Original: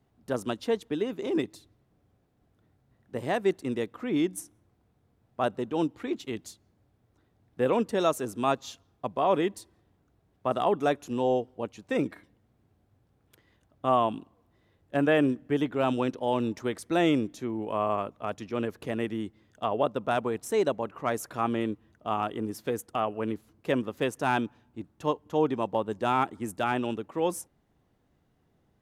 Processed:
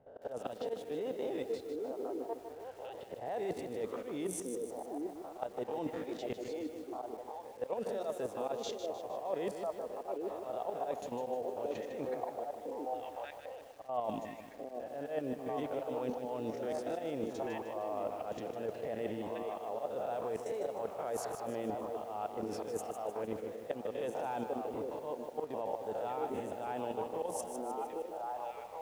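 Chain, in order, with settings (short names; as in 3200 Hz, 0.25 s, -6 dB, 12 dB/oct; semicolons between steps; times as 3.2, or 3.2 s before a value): spectral swells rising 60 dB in 0.38 s; low-pass opened by the level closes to 2600 Hz, open at -22.5 dBFS; band shelf 630 Hz +11 dB 1.2 oct; level quantiser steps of 14 dB; on a send: delay with a stepping band-pass 0.798 s, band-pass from 340 Hz, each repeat 1.4 oct, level -8 dB; on the sum: auto swell 0.178 s; reverse; compressor 5:1, threshold -40 dBFS, peak gain reduction 22.5 dB; reverse; lo-fi delay 0.153 s, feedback 55%, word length 10-bit, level -7.5 dB; gain +3.5 dB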